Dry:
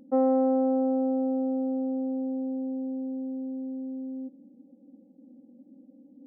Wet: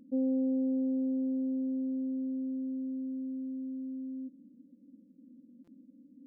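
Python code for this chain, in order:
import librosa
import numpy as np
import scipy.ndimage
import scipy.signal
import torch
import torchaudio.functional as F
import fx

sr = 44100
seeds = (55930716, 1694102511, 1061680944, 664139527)

y = scipy.ndimage.gaussian_filter1d(x, 24.0, mode='constant')
y = fx.buffer_glitch(y, sr, at_s=(5.64,), block=256, repeats=5)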